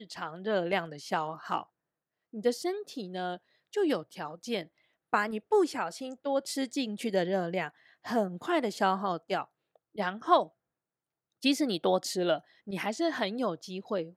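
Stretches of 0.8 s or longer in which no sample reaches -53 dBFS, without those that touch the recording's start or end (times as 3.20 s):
10.48–11.42 s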